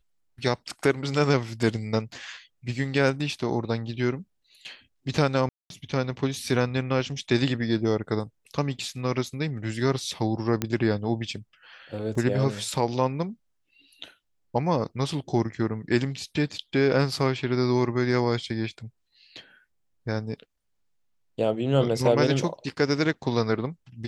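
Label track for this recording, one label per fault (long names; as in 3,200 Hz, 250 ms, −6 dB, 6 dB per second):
5.490000	5.700000	drop-out 212 ms
10.620000	10.620000	click −10 dBFS
12.150000	12.150000	drop-out 3.7 ms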